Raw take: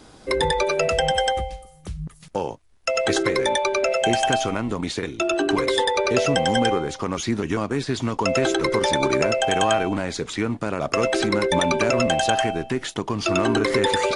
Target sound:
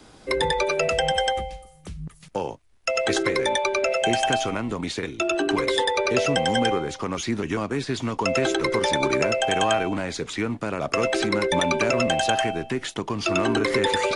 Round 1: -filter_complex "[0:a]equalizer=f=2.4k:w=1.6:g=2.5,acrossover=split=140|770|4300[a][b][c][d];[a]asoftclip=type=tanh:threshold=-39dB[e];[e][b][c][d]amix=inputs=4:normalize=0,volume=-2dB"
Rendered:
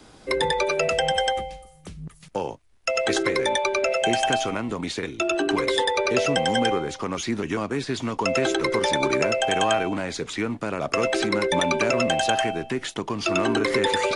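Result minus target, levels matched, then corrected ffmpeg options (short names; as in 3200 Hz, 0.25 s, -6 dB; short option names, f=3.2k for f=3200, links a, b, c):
soft clip: distortion +8 dB
-filter_complex "[0:a]equalizer=f=2.4k:w=1.6:g=2.5,acrossover=split=140|770|4300[a][b][c][d];[a]asoftclip=type=tanh:threshold=-30dB[e];[e][b][c][d]amix=inputs=4:normalize=0,volume=-2dB"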